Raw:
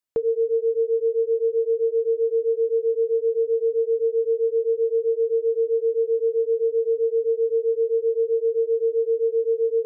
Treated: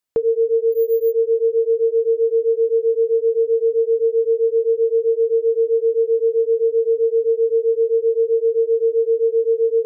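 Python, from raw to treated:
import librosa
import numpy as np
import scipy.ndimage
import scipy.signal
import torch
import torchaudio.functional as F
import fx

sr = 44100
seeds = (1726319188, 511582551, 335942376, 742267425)

y = fx.resample_bad(x, sr, factor=3, down='none', up='hold', at=(0.72, 1.12))
y = y * 10.0 ** (4.5 / 20.0)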